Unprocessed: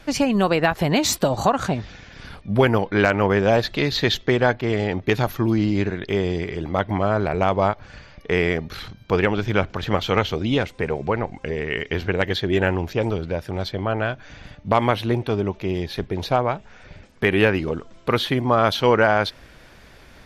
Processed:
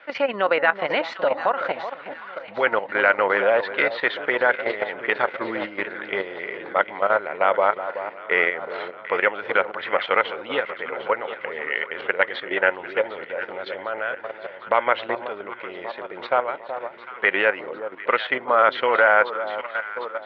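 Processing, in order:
high-frequency loss of the air 84 metres
delay that swaps between a low-pass and a high-pass 376 ms, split 1,100 Hz, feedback 74%, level −9 dB
output level in coarse steps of 10 dB
loudspeaker in its box 490–3,600 Hz, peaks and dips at 540 Hz +9 dB, 950 Hz +4 dB, 1,400 Hz +10 dB, 2,000 Hz +10 dB, 3,000 Hz +3 dB
level −1 dB

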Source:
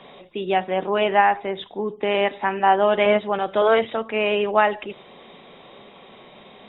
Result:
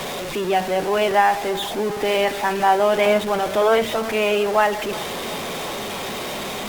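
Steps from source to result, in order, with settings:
converter with a step at zero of −22.5 dBFS
delay with a band-pass on its return 361 ms, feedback 69%, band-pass 900 Hz, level −17.5 dB
level −1 dB
Opus 48 kbit/s 48,000 Hz

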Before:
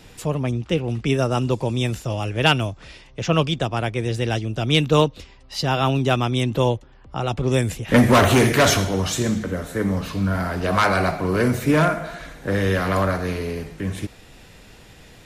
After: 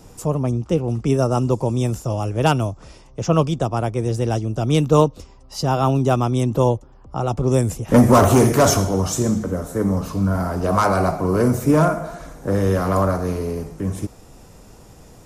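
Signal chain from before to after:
flat-topped bell 2,600 Hz −12 dB
level +2.5 dB

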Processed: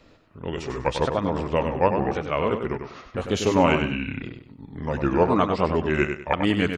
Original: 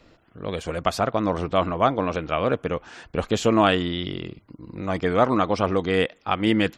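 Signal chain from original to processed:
pitch shifter swept by a sawtooth −6 semitones, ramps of 1,055 ms
repeating echo 97 ms, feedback 28%, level −7 dB

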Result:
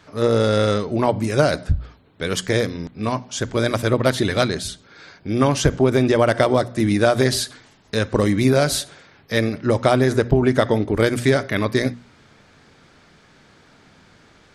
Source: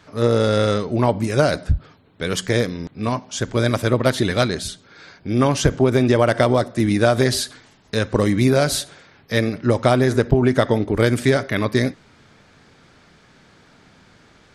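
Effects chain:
mains-hum notches 60/120/180/240 Hz

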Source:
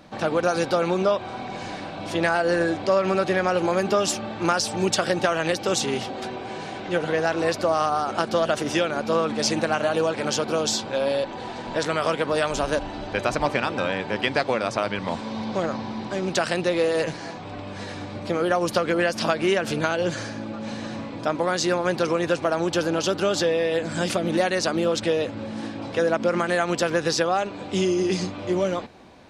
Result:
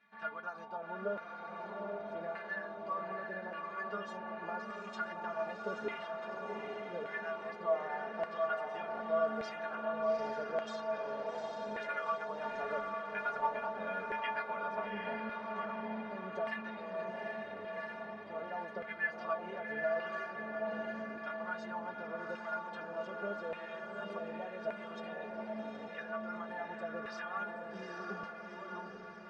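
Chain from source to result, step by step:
bass and treble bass +10 dB, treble −8 dB
speech leveller within 4 dB 0.5 s
stiff-string resonator 210 Hz, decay 0.22 s, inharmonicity 0.008
auto-filter band-pass saw down 0.85 Hz 500–2,000 Hz
on a send: feedback delay with all-pass diffusion 796 ms, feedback 53%, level −3 dB
on the sum: level +2.5 dB

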